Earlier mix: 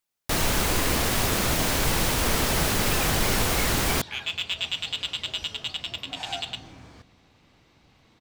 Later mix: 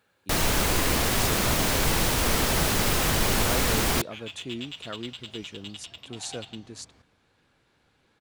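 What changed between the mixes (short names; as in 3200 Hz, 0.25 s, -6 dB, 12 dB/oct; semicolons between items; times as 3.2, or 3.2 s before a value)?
speech: unmuted; second sound -10.5 dB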